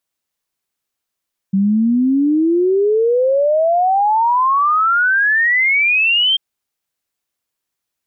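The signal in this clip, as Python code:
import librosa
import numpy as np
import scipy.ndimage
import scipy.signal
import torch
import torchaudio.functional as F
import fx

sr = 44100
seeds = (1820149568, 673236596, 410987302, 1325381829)

y = fx.ess(sr, length_s=4.84, from_hz=190.0, to_hz=3200.0, level_db=-11.0)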